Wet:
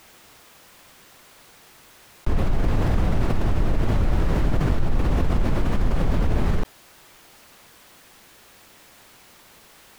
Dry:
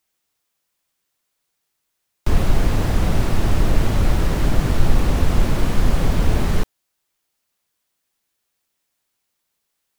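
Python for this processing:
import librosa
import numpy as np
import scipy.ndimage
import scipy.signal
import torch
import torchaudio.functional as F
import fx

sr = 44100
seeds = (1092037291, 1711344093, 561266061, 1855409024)

y = fx.high_shelf(x, sr, hz=3700.0, db=-11.0)
y = fx.env_flatten(y, sr, amount_pct=70)
y = F.gain(torch.from_numpy(y), -8.5).numpy()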